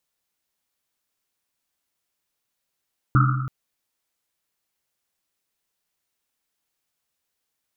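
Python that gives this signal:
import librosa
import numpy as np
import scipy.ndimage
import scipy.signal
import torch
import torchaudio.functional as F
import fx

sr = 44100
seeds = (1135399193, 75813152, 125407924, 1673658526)

y = fx.risset_drum(sr, seeds[0], length_s=0.33, hz=130.0, decay_s=1.5, noise_hz=1300.0, noise_width_hz=240.0, noise_pct=35)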